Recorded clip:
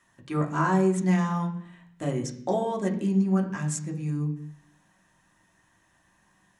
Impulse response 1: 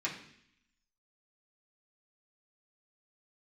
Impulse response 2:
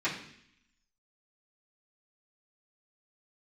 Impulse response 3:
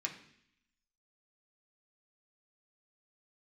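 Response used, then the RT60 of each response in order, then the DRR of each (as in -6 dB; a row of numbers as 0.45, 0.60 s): 3; 0.65, 0.65, 0.65 s; -7.0, -14.0, -0.5 dB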